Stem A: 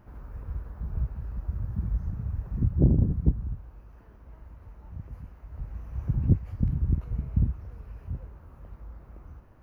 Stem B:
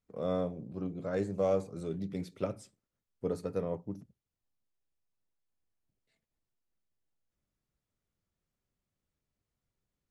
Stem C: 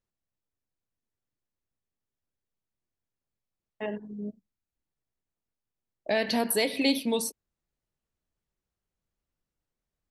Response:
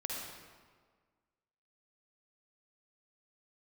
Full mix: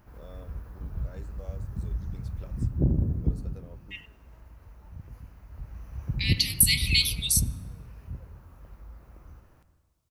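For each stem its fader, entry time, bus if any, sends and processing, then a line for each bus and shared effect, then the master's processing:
−6.0 dB, 0.00 s, send −7.5 dB, no processing
−14.0 dB, 0.00 s, no send, downward compressor 2 to 1, threshold −34 dBFS, peak gain reduction 6 dB
−1.0 dB, 0.10 s, send −22 dB, Butterworth high-pass 2,000 Hz 96 dB per octave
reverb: on, RT60 1.6 s, pre-delay 47 ms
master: high-shelf EQ 2,500 Hz +11.5 dB

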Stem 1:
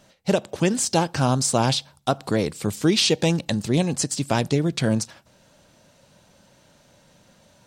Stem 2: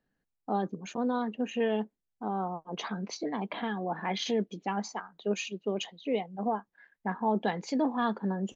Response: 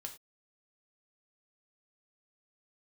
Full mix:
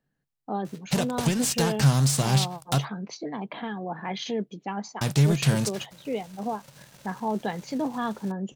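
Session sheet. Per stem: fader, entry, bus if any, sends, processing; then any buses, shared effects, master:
−2.5 dB, 0.65 s, muted 0:02.85–0:05.01, no send, spectral envelope flattened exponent 0.6; downward compressor 6 to 1, threshold −30 dBFS, peak gain reduction 15.5 dB; leveller curve on the samples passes 3
−0.5 dB, 0.00 s, no send, no processing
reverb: not used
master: parametric band 140 Hz +12 dB 0.31 octaves

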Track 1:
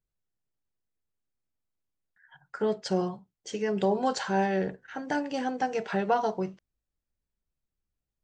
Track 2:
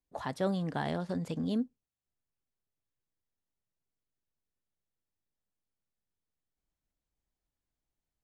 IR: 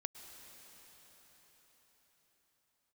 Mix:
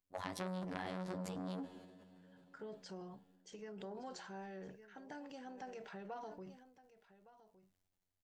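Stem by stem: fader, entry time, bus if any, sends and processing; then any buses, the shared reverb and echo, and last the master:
−18.0 dB, 0.00 s, no send, echo send −18 dB, downward compressor 1.5 to 1, threshold −34 dBFS, peak gain reduction 5.5 dB
0.0 dB, 0.00 s, send −5.5 dB, no echo send, downward compressor 6 to 1, threshold −34 dBFS, peak gain reduction 8.5 dB; phases set to zero 92.2 Hz; flanger 2 Hz, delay 5.1 ms, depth 6 ms, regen −45%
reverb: on, pre-delay 98 ms
echo: single-tap delay 1,163 ms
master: transient designer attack +1 dB, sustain +8 dB; saturating transformer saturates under 1,500 Hz

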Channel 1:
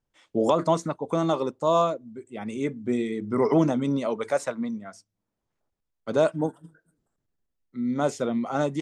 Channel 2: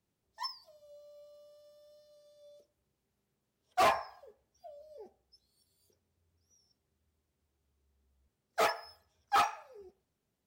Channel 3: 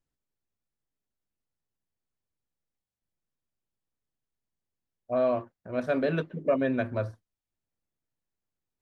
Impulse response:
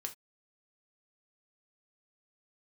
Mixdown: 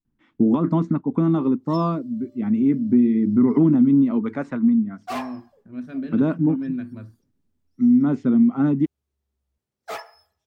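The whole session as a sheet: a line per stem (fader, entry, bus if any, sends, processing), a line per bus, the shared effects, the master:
+2.5 dB, 0.05 s, bus A, no send, low-pass filter 1,800 Hz 12 dB per octave; low-shelf EQ 390 Hz −9 dB
−3.5 dB, 1.30 s, no bus, no send, no processing
−10.5 dB, 0.00 s, bus A, no send, low-shelf EQ 370 Hz −11 dB
bus A: 0.0 dB, low shelf with overshoot 380 Hz +13.5 dB, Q 3; downward compressor 2 to 1, threshold −17 dBFS, peak gain reduction 6.5 dB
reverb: not used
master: no processing

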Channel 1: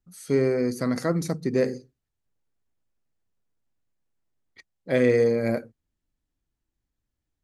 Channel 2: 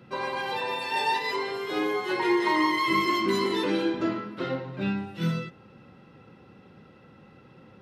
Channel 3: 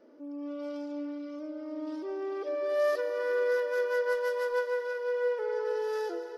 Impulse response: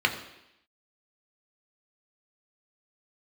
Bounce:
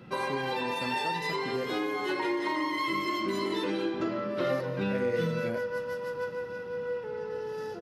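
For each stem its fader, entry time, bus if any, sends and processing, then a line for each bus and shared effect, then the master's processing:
−8.0 dB, 0.00 s, bus A, no send, no processing
+2.5 dB, 0.00 s, bus A, no send, hum removal 138.1 Hz, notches 37
−4.5 dB, 1.65 s, no bus, no send, no processing
bus A: 0.0 dB, downward compressor, threshold −28 dBFS, peak gain reduction 10.5 dB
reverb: not used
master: no processing

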